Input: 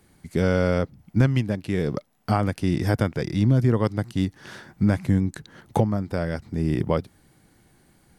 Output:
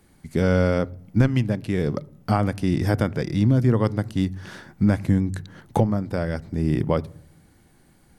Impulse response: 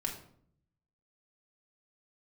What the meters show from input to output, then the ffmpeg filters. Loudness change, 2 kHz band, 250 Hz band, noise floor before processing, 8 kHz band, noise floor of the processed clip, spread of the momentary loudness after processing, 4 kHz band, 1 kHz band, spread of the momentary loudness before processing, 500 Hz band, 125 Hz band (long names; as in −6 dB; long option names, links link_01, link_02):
+1.0 dB, +0.5 dB, +1.5 dB, −60 dBFS, can't be measured, −57 dBFS, 8 LU, 0.0 dB, +0.5 dB, 8 LU, +1.0 dB, +1.0 dB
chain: -filter_complex "[0:a]asplit=2[link_01][link_02];[1:a]atrim=start_sample=2205,lowpass=2400,lowshelf=frequency=160:gain=11[link_03];[link_02][link_03]afir=irnorm=-1:irlink=0,volume=-18.5dB[link_04];[link_01][link_04]amix=inputs=2:normalize=0"